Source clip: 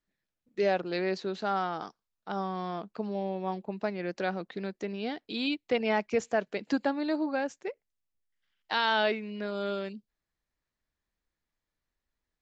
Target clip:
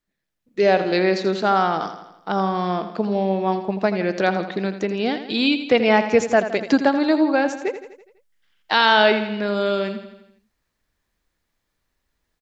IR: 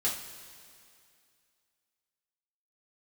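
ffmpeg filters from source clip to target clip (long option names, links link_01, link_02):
-filter_complex "[0:a]asplit=2[link_01][link_02];[link_02]aecho=0:1:83|166|249|332|415|498:0.282|0.155|0.0853|0.0469|0.0258|0.0142[link_03];[link_01][link_03]amix=inputs=2:normalize=0,dynaudnorm=framelen=220:gausssize=5:maxgain=8dB,volume=3.5dB"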